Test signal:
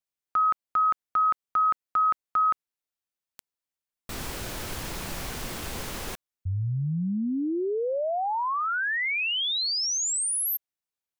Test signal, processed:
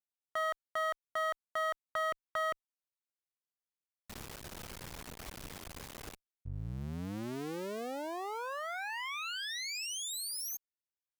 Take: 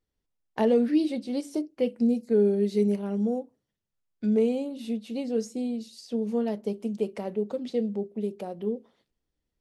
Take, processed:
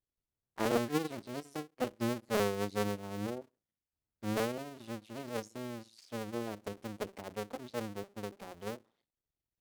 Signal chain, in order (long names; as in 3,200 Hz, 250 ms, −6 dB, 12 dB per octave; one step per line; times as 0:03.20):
sub-harmonics by changed cycles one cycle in 2, muted
harmonic generator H 3 −17 dB, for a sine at −12.5 dBFS
level −4.5 dB